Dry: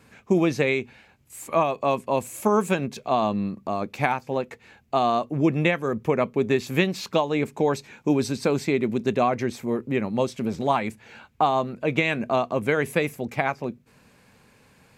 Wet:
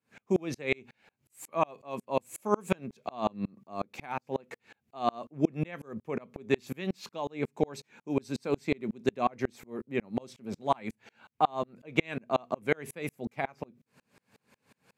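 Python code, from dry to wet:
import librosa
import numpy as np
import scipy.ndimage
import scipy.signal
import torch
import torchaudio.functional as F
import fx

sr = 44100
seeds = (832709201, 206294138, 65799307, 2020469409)

y = scipy.signal.sosfilt(scipy.signal.butter(2, 120.0, 'highpass', fs=sr, output='sos'), x)
y = fx.tremolo_decay(y, sr, direction='swelling', hz=5.5, depth_db=35)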